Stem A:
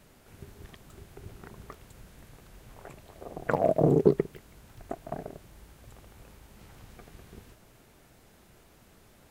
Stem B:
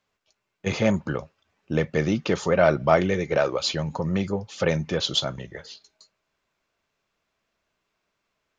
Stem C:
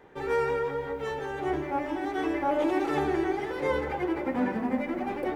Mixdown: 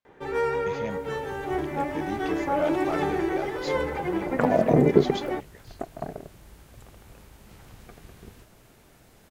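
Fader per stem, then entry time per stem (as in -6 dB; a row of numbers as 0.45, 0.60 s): +2.5, -14.0, +1.0 dB; 0.90, 0.00, 0.05 s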